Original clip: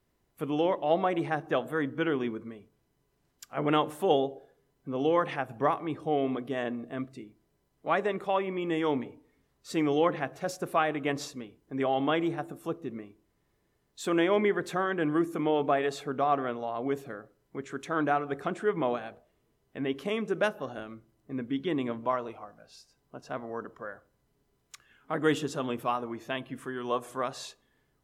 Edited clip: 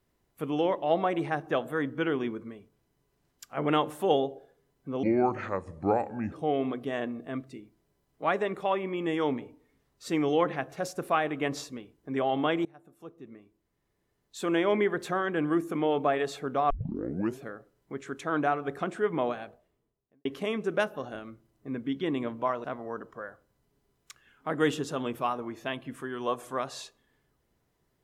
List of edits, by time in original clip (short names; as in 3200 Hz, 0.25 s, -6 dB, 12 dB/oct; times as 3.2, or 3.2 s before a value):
5.03–5.96 speed 72%
12.29–14.42 fade in, from -23.5 dB
16.34 tape start 0.70 s
19.06–19.89 studio fade out
22.28–23.28 cut